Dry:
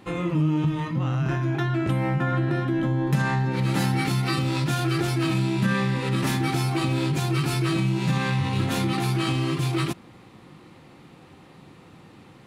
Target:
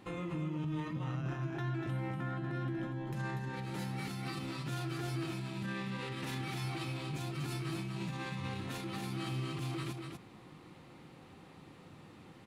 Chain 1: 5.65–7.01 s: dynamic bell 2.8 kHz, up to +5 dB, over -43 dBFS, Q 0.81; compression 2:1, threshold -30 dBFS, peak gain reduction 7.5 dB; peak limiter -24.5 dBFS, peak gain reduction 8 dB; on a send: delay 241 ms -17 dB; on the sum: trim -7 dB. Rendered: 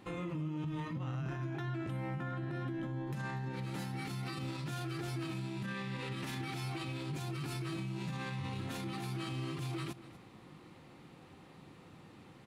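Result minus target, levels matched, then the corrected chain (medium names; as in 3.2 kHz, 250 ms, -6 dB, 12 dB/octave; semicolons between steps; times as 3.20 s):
echo-to-direct -11.5 dB
5.65–7.01 s: dynamic bell 2.8 kHz, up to +5 dB, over -43 dBFS, Q 0.81; compression 2:1, threshold -30 dBFS, peak gain reduction 7.5 dB; peak limiter -24.5 dBFS, peak gain reduction 8 dB; on a send: delay 241 ms -5.5 dB; on the sum: trim -7 dB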